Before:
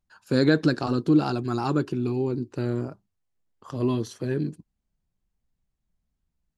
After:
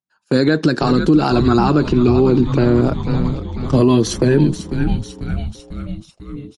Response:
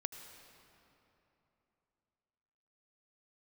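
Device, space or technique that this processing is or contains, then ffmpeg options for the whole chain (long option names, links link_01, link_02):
low-bitrate web radio: -filter_complex "[0:a]asplit=3[link_01][link_02][link_03];[link_01]afade=type=out:start_time=1.35:duration=0.02[link_04];[link_02]lowpass=5300,afade=type=in:start_time=1.35:duration=0.02,afade=type=out:start_time=2.81:duration=0.02[link_05];[link_03]afade=type=in:start_time=2.81:duration=0.02[link_06];[link_04][link_05][link_06]amix=inputs=3:normalize=0,agate=range=-17dB:threshold=-40dB:ratio=16:detection=peak,highpass=frequency=120:width=0.5412,highpass=frequency=120:width=1.3066,asplit=7[link_07][link_08][link_09][link_10][link_11][link_12][link_13];[link_08]adelay=495,afreqshift=-110,volume=-13dB[link_14];[link_09]adelay=990,afreqshift=-220,volume=-18dB[link_15];[link_10]adelay=1485,afreqshift=-330,volume=-23.1dB[link_16];[link_11]adelay=1980,afreqshift=-440,volume=-28.1dB[link_17];[link_12]adelay=2475,afreqshift=-550,volume=-33.1dB[link_18];[link_13]adelay=2970,afreqshift=-660,volume=-38.2dB[link_19];[link_07][link_14][link_15][link_16][link_17][link_18][link_19]amix=inputs=7:normalize=0,dynaudnorm=framelen=120:gausssize=11:maxgain=14.5dB,alimiter=limit=-12.5dB:level=0:latency=1:release=142,volume=8.5dB" -ar 48000 -c:a libmp3lame -b:a 48k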